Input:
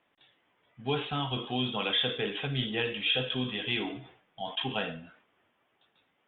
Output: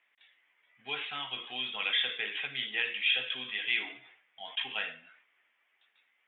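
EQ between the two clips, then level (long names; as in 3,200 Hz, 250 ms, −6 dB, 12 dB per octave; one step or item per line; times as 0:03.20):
high-pass filter 1,300 Hz 6 dB per octave
parametric band 2,100 Hz +13 dB 0.8 octaves
−4.5 dB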